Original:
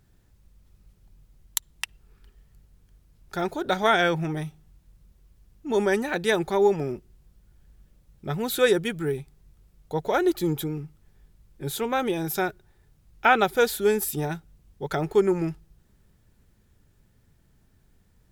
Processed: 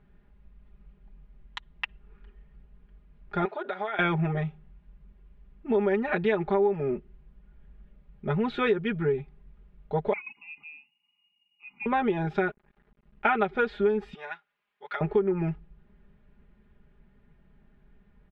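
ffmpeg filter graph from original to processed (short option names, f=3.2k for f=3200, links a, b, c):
-filter_complex "[0:a]asettb=1/sr,asplit=3[a][b][c];[a]atrim=end=3.454[d];[b]atrim=start=3.45:end=3.99,asetpts=PTS-STARTPTS,afade=t=in:d=0.004:c=qsin,afade=t=out:st=0.536:d=0.004:c=qsin,highpass=510,lowpass=6.4k,acompressor=threshold=-30dB:ratio=8:attack=3.2:release=140:knee=1:detection=peak[e];[c]atrim=start=3.986[f];[d][e]acrossfade=d=0.004:c1=hsin:c2=qsin[g];[g][f]acrossfade=d=0.004:c1=qsin:c2=hsin,asettb=1/sr,asplit=3[h][i][j];[h]atrim=end=10.134[k];[i]atrim=start=10.13:end=11.86,asetpts=PTS-STARTPTS,afade=t=in:d=0.004:c=qsin,afade=t=out:st=1.726:d=0.004:c=qsin,lowpass=f=2.5k:t=q:w=0.5098,lowpass=f=2.5k:t=q:w=0.6013,lowpass=f=2.5k:t=q:w=0.9,lowpass=f=2.5k:t=q:w=2.563,afreqshift=-2900,asplit=3[l][m][n];[l]bandpass=f=300:t=q:w=8,volume=0dB[o];[m]bandpass=f=870:t=q:w=8,volume=-6dB[p];[n]bandpass=f=2.24k:t=q:w=8,volume=-9dB[q];[o][p][q]amix=inputs=3:normalize=0,lowshelf=f=250:t=q:w=3:g=13[r];[j]atrim=start=11.856[s];[k][r]acrossfade=d=0.004:c1=hsin:c2=qsin[t];[t][s]acrossfade=d=0.004:c1=qsin:c2=hsin,asettb=1/sr,asplit=3[u][v][w];[u]atrim=end=12.424[x];[v]atrim=start=12.42:end=13.3,asetpts=PTS-STARTPTS,afade=t=in:d=0.004:c=qsin,afade=t=out:st=0.876:d=0.004:c=qsin,acompressor=mode=upward:threshold=-44dB:ratio=2.5:attack=3.2:release=140:knee=2.83:detection=peak,aeval=exprs='sgn(val(0))*max(abs(val(0))-0.00299,0)':c=same[y];[w]atrim=start=13.296[z];[x][y]acrossfade=d=0.004:c1=hsin:c2=qsin[aa];[aa][z]acrossfade=d=0.004:c1=qsin:c2=hsin,asettb=1/sr,asplit=3[ab][ac][ad];[ab]atrim=end=14.144[ae];[ac]atrim=start=14.14:end=15.01,asetpts=PTS-STARTPTS,afade=t=in:d=0.004:c=qsin,afade=t=out:st=0.866:d=0.004:c=qsin,highpass=1.3k,acrusher=bits=8:mode=log:mix=0:aa=0.000001[af];[ad]atrim=start=15.006[ag];[ae][af]acrossfade=d=0.004:c1=hsin:c2=qsin[ah];[ah][ag]acrossfade=d=0.004:c1=qsin:c2=hsin,lowpass=f=2.7k:w=0.5412,lowpass=f=2.7k:w=1.3066,aecho=1:1:4.9:0.87,acompressor=threshold=-21dB:ratio=6"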